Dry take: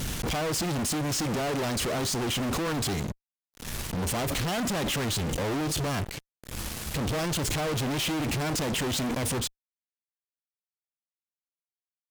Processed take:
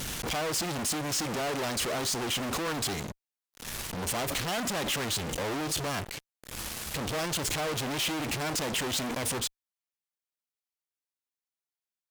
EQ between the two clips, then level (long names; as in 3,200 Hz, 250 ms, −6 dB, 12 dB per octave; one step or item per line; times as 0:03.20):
low-shelf EQ 320 Hz −8.5 dB
0.0 dB